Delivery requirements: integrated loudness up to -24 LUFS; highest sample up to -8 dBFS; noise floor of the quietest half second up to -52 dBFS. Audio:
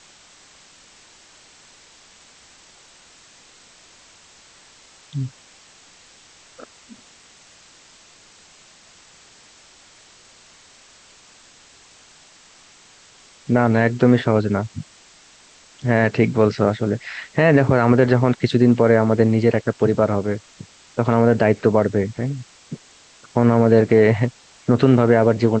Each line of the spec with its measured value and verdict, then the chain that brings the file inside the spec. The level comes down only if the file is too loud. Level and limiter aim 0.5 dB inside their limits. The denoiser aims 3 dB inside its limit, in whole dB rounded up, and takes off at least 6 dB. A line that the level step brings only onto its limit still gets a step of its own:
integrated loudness -18.0 LUFS: fail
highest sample -3.0 dBFS: fail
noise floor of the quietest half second -50 dBFS: fail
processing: trim -6.5 dB

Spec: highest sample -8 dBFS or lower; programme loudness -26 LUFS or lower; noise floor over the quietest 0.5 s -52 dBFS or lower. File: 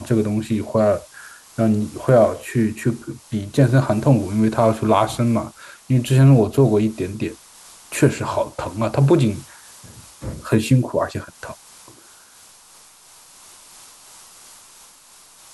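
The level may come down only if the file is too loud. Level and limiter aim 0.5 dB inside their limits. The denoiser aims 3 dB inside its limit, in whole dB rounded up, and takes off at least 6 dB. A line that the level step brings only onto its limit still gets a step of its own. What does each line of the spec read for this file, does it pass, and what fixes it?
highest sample -4.0 dBFS: fail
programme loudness -19.0 LUFS: fail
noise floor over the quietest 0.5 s -48 dBFS: fail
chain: trim -7.5 dB

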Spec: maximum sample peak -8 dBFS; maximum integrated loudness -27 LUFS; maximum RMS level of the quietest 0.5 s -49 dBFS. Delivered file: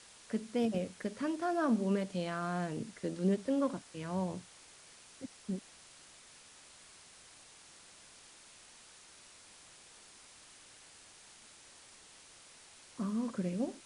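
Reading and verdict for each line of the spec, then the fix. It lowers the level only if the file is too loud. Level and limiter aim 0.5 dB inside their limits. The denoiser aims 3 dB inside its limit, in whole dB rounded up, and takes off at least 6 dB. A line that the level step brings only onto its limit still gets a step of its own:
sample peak -20.5 dBFS: pass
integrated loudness -36.0 LUFS: pass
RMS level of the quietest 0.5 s -58 dBFS: pass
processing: none needed

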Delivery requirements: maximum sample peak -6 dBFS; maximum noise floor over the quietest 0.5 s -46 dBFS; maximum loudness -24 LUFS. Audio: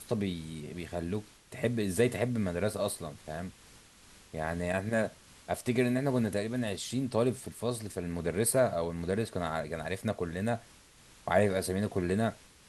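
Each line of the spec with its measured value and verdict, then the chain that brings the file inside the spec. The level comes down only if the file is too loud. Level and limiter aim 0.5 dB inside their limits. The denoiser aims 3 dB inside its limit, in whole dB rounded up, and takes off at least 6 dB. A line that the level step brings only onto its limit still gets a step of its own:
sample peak -12.5 dBFS: pass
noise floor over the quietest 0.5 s -58 dBFS: pass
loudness -32.5 LUFS: pass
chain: none needed

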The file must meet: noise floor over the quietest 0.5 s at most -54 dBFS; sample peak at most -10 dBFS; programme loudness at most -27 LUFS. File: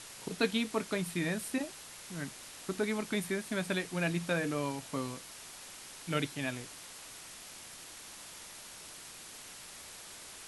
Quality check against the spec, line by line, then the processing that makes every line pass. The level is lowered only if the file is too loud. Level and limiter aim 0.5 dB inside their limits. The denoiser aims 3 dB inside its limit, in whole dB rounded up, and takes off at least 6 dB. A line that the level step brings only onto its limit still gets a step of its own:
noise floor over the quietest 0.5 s -49 dBFS: fail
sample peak -16.5 dBFS: pass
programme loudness -37.5 LUFS: pass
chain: noise reduction 8 dB, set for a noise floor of -49 dBFS

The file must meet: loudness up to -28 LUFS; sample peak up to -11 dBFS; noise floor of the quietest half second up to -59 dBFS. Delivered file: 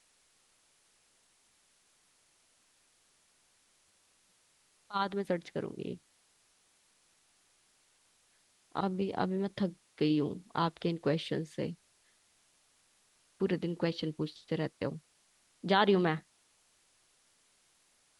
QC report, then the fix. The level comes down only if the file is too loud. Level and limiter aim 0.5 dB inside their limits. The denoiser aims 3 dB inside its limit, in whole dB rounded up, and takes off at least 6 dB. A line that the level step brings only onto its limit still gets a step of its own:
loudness -34.0 LUFS: pass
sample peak -13.5 dBFS: pass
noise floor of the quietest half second -70 dBFS: pass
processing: none needed

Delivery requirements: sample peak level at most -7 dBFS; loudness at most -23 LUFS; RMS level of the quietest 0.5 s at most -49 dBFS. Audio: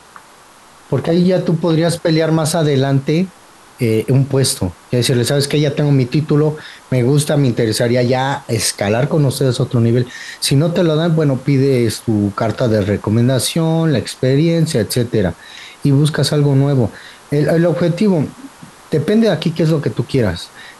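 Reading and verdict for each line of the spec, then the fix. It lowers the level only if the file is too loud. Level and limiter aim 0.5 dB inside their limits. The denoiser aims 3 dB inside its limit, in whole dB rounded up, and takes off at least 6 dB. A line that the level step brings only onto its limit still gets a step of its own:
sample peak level -4.5 dBFS: fail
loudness -15.5 LUFS: fail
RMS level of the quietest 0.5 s -43 dBFS: fail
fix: trim -8 dB

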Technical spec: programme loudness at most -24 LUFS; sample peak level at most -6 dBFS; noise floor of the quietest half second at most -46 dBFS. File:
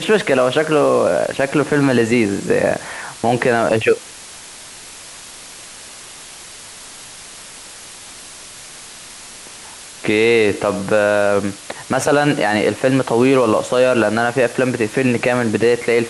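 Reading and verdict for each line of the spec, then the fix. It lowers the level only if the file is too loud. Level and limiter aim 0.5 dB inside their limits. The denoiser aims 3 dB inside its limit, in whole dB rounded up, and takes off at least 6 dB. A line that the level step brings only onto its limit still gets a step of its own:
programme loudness -16.0 LUFS: fail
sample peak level -3.5 dBFS: fail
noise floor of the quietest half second -37 dBFS: fail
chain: noise reduction 6 dB, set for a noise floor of -37 dBFS; trim -8.5 dB

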